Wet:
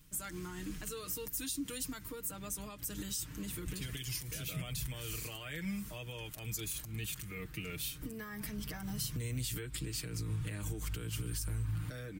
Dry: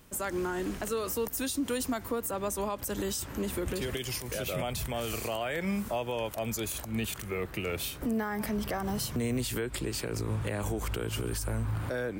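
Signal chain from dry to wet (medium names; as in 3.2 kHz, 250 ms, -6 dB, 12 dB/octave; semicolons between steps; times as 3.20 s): amplifier tone stack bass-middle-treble 6-0-2; comb 6.5 ms, depth 72%; trim +9.5 dB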